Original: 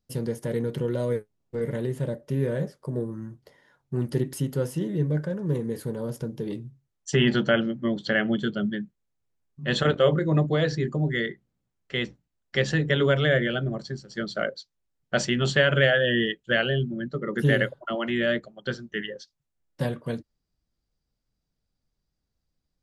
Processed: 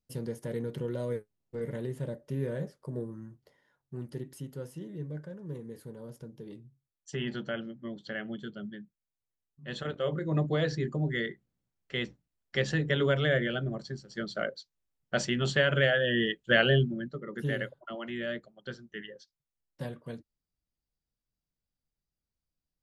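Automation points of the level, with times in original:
0:03.04 −7 dB
0:04.21 −13.5 dB
0:09.90 −13.5 dB
0:10.46 −5 dB
0:16.09 −5 dB
0:16.75 +2 dB
0:17.24 −10.5 dB

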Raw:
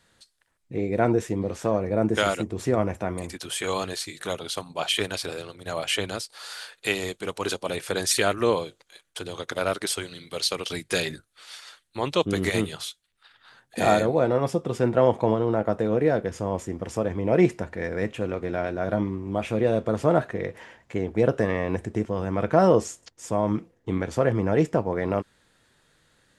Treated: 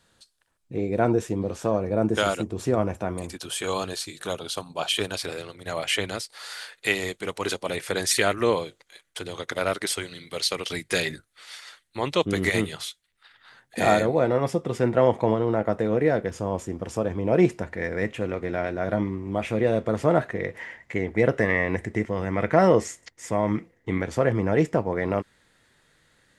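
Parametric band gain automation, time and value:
parametric band 2,000 Hz 0.31 octaves
−5.5 dB
from 0:05.19 +6 dB
from 0:16.30 −2.5 dB
from 0:17.62 +6.5 dB
from 0:20.59 +15 dB
from 0:24.01 +5.5 dB

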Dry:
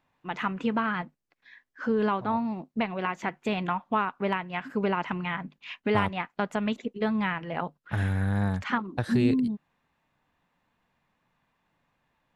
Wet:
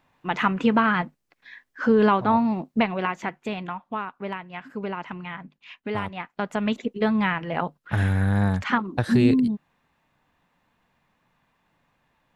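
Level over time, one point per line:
0:02.74 +7.5 dB
0:03.72 −4 dB
0:06.03 −4 dB
0:06.77 +5 dB

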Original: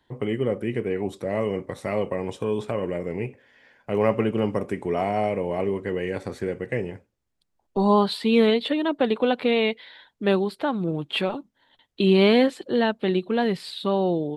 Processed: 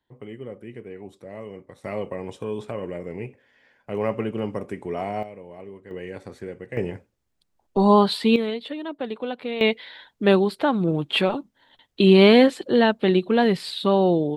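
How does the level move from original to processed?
−12 dB
from 0:01.84 −4 dB
from 0:05.23 −15 dB
from 0:05.91 −7 dB
from 0:06.77 +3 dB
from 0:08.36 −8 dB
from 0:09.61 +4 dB

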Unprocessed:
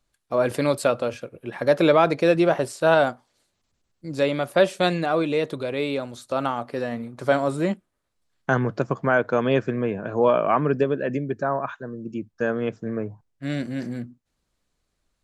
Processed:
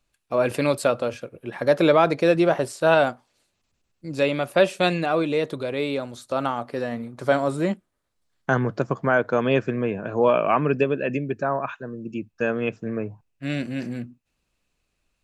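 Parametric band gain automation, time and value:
parametric band 2,600 Hz 0.22 octaves
+9 dB
from 0:00.77 0 dB
from 0:02.90 +6.5 dB
from 0:05.20 −0.5 dB
from 0:09.40 +5.5 dB
from 0:10.31 +13 dB

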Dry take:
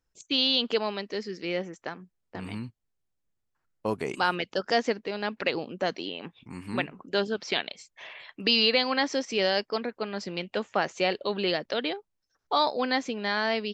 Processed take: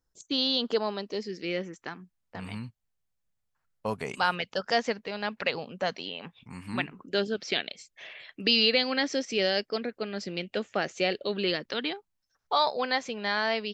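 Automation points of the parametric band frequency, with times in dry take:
parametric band −10.5 dB 0.59 octaves
0:00.94 2,500 Hz
0:01.45 930 Hz
0:02.39 330 Hz
0:06.60 330 Hz
0:07.17 970 Hz
0:11.26 970 Hz
0:12.60 290 Hz

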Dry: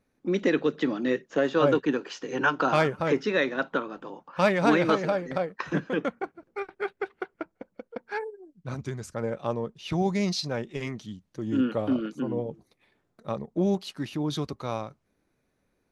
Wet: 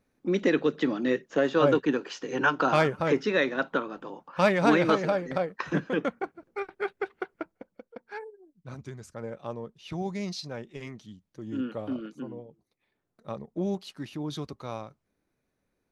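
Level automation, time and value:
0:07.37 0 dB
0:07.92 −7 dB
0:12.22 −7 dB
0:12.50 −16 dB
0:13.29 −5 dB

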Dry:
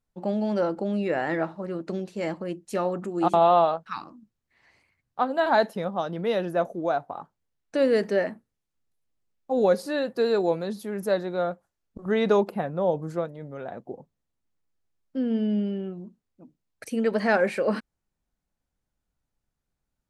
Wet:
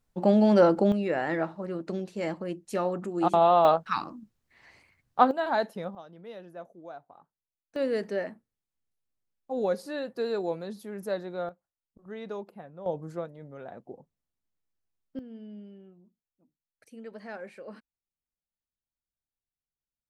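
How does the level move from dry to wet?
+6 dB
from 0:00.92 −2 dB
from 0:03.65 +5 dB
from 0:05.31 −6 dB
from 0:05.95 −18 dB
from 0:07.76 −7 dB
from 0:11.49 −16.5 dB
from 0:12.86 −6.5 dB
from 0:15.19 −19 dB

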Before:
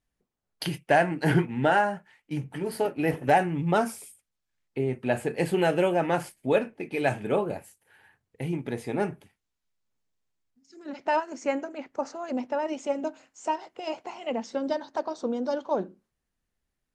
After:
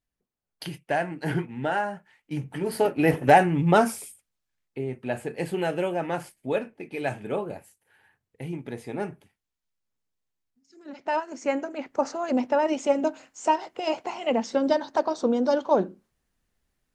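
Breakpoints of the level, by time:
0:01.67 −5 dB
0:02.96 +5 dB
0:04.00 +5 dB
0:04.80 −3.5 dB
0:10.88 −3.5 dB
0:12.06 +6 dB

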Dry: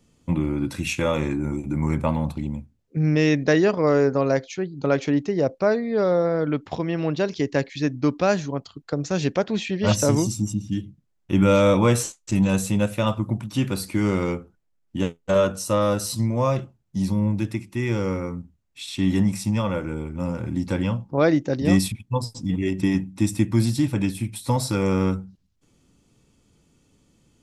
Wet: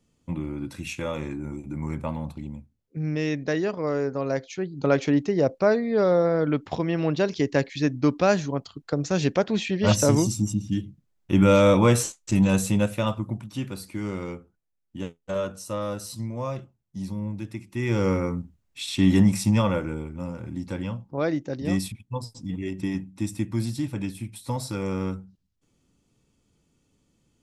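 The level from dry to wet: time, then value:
0:04.14 −7.5 dB
0:04.82 0 dB
0:12.71 0 dB
0:13.75 −9 dB
0:17.47 −9 dB
0:18.06 +2.5 dB
0:19.61 +2.5 dB
0:20.32 −7 dB

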